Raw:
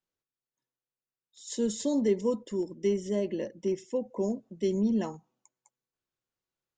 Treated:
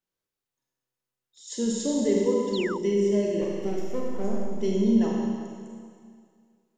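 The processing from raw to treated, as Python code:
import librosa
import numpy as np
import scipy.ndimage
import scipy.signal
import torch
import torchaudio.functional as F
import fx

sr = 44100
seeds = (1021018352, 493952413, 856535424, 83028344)

y = fx.halfwave_gain(x, sr, db=-12.0, at=(3.41, 4.48))
y = fx.rev_schroeder(y, sr, rt60_s=2.1, comb_ms=31, drr_db=-2.5)
y = fx.spec_paint(y, sr, seeds[0], shape='fall', start_s=2.53, length_s=0.25, low_hz=830.0, high_hz=4700.0, level_db=-36.0)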